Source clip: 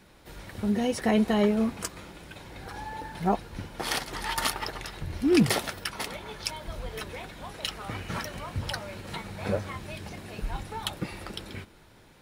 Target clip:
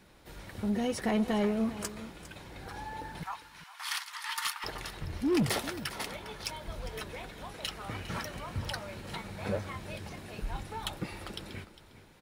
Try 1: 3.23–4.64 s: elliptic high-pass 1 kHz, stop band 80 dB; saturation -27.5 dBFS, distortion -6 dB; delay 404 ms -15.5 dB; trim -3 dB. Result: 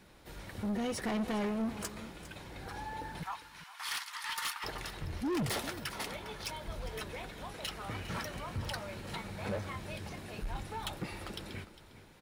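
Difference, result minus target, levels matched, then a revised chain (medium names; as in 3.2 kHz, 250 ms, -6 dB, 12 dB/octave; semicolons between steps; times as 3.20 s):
saturation: distortion +8 dB
3.23–4.64 s: elliptic high-pass 1 kHz, stop band 80 dB; saturation -19 dBFS, distortion -15 dB; delay 404 ms -15.5 dB; trim -3 dB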